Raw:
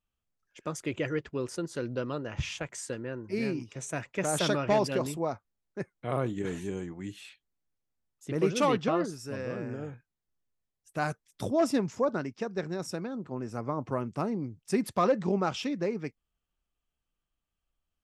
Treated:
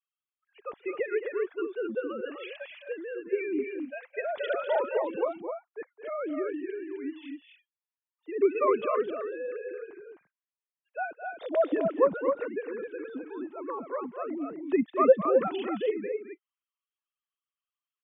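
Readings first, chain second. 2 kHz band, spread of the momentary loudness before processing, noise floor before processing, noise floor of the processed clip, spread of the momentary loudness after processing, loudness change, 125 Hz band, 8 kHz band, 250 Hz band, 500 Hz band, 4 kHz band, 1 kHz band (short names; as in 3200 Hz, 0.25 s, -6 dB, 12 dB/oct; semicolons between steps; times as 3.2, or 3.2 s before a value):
-0.5 dB, 13 LU, under -85 dBFS, under -85 dBFS, 15 LU, +1.5 dB, under -15 dB, under -40 dB, -2.5 dB, +3.5 dB, n/a, +0.5 dB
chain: sine-wave speech; loudspeakers at several distances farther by 74 m -12 dB, 89 m -5 dB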